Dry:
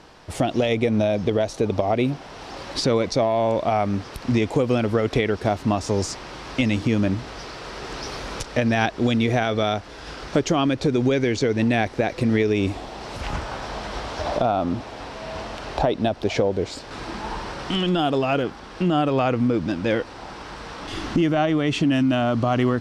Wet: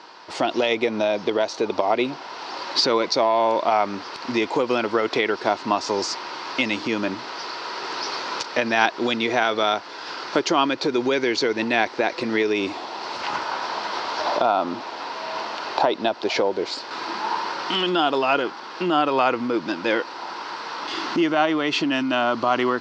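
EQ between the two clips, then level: cabinet simulation 260–5900 Hz, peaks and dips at 350 Hz +5 dB, 960 Hz +10 dB, 1.4 kHz +5 dB, 2.3 kHz +4 dB, 4.5 kHz +6 dB; tilt EQ +1.5 dB/octave; band-stop 2.3 kHz, Q 18; 0.0 dB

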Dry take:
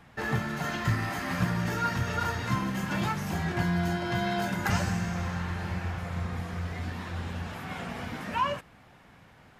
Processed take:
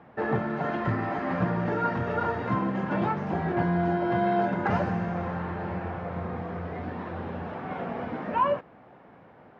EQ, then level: band-pass filter 490 Hz, Q 0.89; distance through air 150 m; +9.0 dB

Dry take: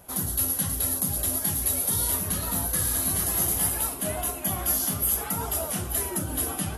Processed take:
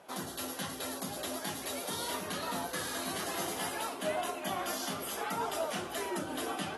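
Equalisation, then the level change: band-pass 310–4600 Hz; 0.0 dB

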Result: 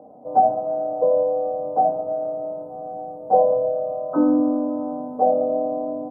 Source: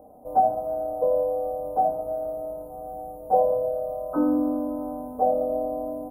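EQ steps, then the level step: high-pass 120 Hz 24 dB/octave; tape spacing loss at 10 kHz 24 dB; +5.5 dB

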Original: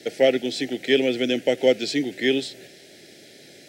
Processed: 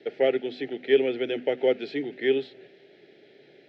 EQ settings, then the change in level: hum notches 50/100/150/200/250 Hz; dynamic bell 1.3 kHz, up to +4 dB, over -37 dBFS, Q 0.98; cabinet simulation 120–3400 Hz, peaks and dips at 140 Hz +4 dB, 410 Hz +9 dB, 840 Hz +4 dB, 1.2 kHz +5 dB; -8.5 dB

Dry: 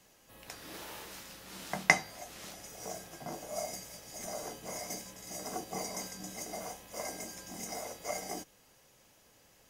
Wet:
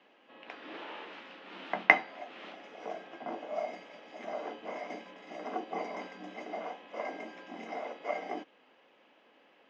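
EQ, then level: elliptic band-pass 250–3000 Hz, stop band 60 dB; +4.0 dB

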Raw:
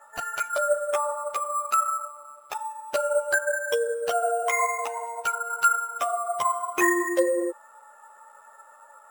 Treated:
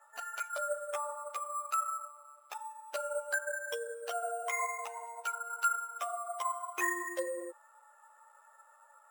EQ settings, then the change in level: Bessel high-pass 640 Hz, order 2; -9.0 dB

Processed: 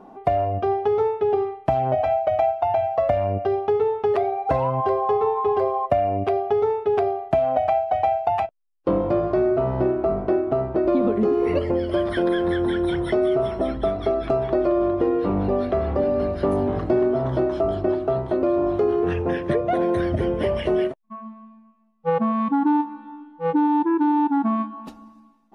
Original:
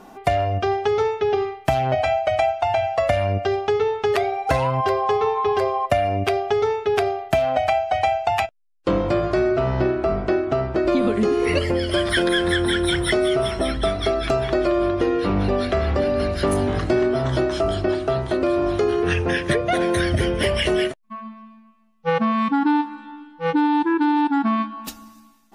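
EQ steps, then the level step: tape spacing loss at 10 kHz 21 dB; bass shelf 120 Hz -9 dB; high-order bell 3.3 kHz -8.5 dB 2.8 oct; +1.5 dB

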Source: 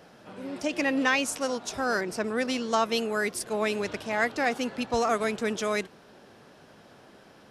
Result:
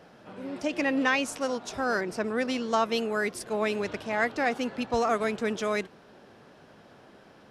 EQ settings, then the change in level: treble shelf 4.9 kHz -7.5 dB; 0.0 dB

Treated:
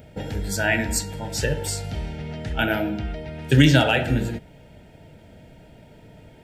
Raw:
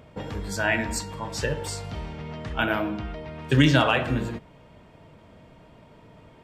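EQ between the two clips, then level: Butterworth band-stop 1.1 kHz, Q 2.5; bass shelf 140 Hz +4.5 dB; treble shelf 9.1 kHz +12 dB; +2.0 dB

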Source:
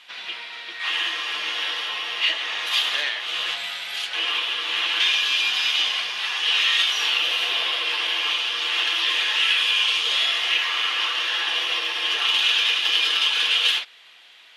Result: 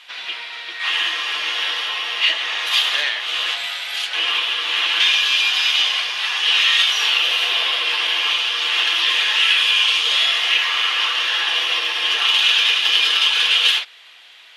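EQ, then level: high-pass 370 Hz 6 dB/octave; +4.5 dB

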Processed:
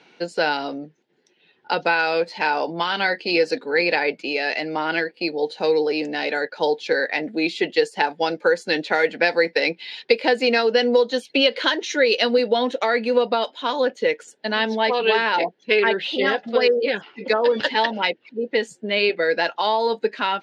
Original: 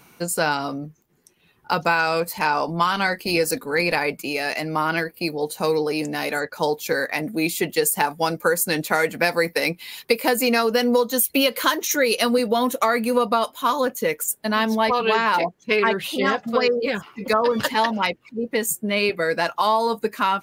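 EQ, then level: cabinet simulation 370–4200 Hz, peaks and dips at 660 Hz -4 dB, 1.2 kHz -8 dB, 2.3 kHz -4 dB; peaking EQ 1.1 kHz -8.5 dB 0.5 oct; +5.0 dB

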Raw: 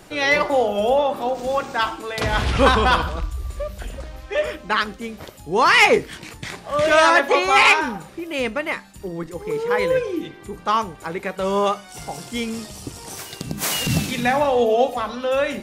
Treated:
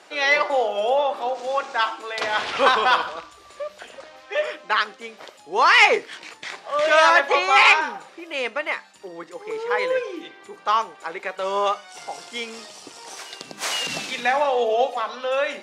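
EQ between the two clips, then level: high-pass 540 Hz 12 dB/octave; low-pass 6.3 kHz 12 dB/octave; 0.0 dB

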